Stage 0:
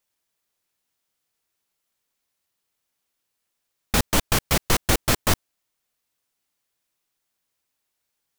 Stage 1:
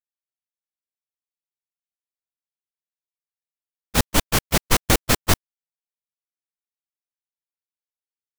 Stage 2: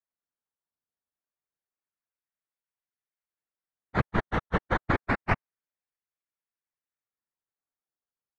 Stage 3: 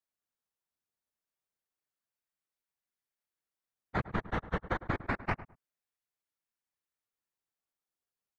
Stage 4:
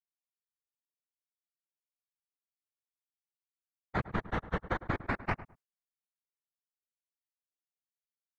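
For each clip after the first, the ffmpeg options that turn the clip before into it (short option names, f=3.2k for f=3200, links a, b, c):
-af "agate=range=-31dB:threshold=-19dB:ratio=16:detection=peak,volume=3.5dB"
-af "acrusher=samples=12:mix=1:aa=0.000001:lfo=1:lforange=12:lforate=0.28,lowpass=f=2k:t=q:w=1.6,afftfilt=real='hypot(re,im)*cos(2*PI*random(0))':imag='hypot(re,im)*sin(2*PI*random(1))':win_size=512:overlap=0.75,volume=-2.5dB"
-filter_complex "[0:a]acompressor=threshold=-29dB:ratio=6,asplit=2[a][b];[b]adelay=105,lowpass=f=1.3k:p=1,volume=-14.5dB,asplit=2[c][d];[d]adelay=105,lowpass=f=1.3k:p=1,volume=0.22[e];[a][c][e]amix=inputs=3:normalize=0"
-af "agate=range=-33dB:threshold=-59dB:ratio=3:detection=peak"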